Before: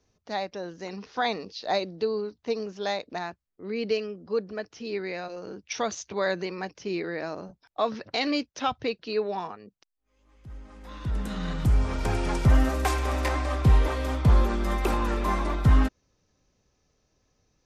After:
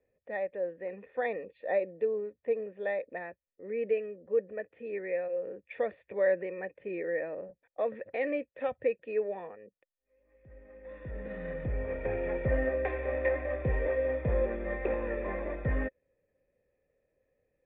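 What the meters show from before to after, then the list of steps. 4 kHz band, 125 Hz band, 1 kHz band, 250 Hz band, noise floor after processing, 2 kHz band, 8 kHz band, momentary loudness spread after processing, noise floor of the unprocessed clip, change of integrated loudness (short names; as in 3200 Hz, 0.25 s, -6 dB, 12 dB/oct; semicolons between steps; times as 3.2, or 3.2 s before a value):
under -25 dB, -12.5 dB, -12.0 dB, -10.0 dB, -85 dBFS, -4.0 dB, under -35 dB, 12 LU, -76 dBFS, -5.5 dB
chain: vocal tract filter e; gain +7.5 dB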